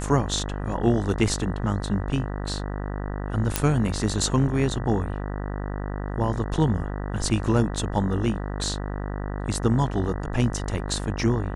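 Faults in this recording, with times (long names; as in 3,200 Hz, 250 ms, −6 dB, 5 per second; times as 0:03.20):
mains buzz 50 Hz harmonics 39 −30 dBFS
0:03.56: click −4 dBFS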